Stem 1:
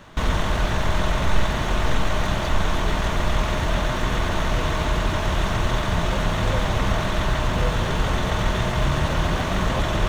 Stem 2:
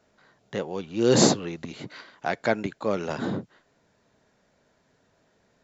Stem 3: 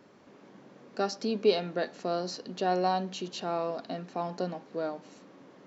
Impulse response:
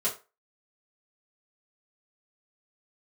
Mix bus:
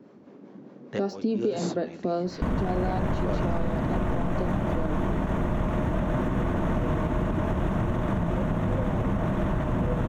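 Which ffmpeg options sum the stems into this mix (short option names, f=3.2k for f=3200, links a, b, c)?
-filter_complex "[0:a]equalizer=f=4.4k:w=1.2:g=-12.5,bandreject=f=410:w=12,adelay=2250,volume=-4.5dB[a];[1:a]agate=range=-33dB:threshold=-48dB:ratio=3:detection=peak,adelay=400,volume=-0.5dB[b];[2:a]deesser=0.95,acrossover=split=420[c][d];[c]aeval=exprs='val(0)*(1-0.5/2+0.5/2*cos(2*PI*4.9*n/s))':c=same[e];[d]aeval=exprs='val(0)*(1-0.5/2-0.5/2*cos(2*PI*4.9*n/s))':c=same[f];[e][f]amix=inputs=2:normalize=0,volume=-1dB,asplit=2[g][h];[h]apad=whole_len=266053[i];[b][i]sidechaincompress=threshold=-39dB:ratio=8:attack=6.7:release=415[j];[a][g]amix=inputs=2:normalize=0,equalizer=f=240:t=o:w=2.7:g=12.5,alimiter=limit=-15dB:level=0:latency=1:release=162,volume=0dB[k];[j][k]amix=inputs=2:normalize=0,highshelf=f=3.7k:g=-6,acompressor=threshold=-21dB:ratio=6"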